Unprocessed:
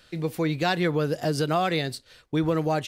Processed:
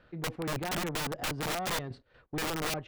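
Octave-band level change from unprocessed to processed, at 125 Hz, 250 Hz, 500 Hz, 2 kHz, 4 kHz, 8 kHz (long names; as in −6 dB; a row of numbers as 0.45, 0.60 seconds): −10.5, −11.5, −11.5, −4.5, −3.5, +4.0 decibels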